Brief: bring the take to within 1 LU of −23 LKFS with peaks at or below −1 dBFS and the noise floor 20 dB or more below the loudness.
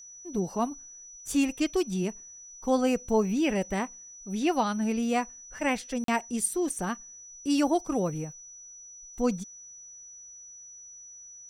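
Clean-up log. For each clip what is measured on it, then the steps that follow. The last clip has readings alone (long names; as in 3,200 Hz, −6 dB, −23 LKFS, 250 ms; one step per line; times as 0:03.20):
number of dropouts 1; longest dropout 43 ms; interfering tone 5,900 Hz; level of the tone −45 dBFS; integrated loudness −29.0 LKFS; sample peak −13.0 dBFS; target loudness −23.0 LKFS
→ repair the gap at 0:06.04, 43 ms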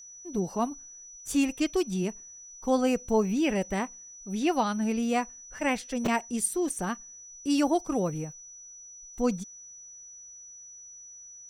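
number of dropouts 0; interfering tone 5,900 Hz; level of the tone −45 dBFS
→ notch filter 5,900 Hz, Q 30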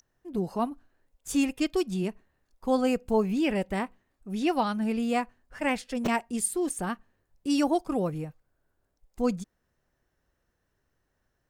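interfering tone none found; integrated loudness −29.0 LKFS; sample peak −13.0 dBFS; target loudness −23.0 LKFS
→ level +6 dB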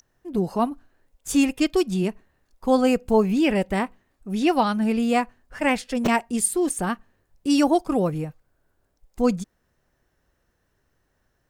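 integrated loudness −23.0 LKFS; sample peak −7.0 dBFS; background noise floor −71 dBFS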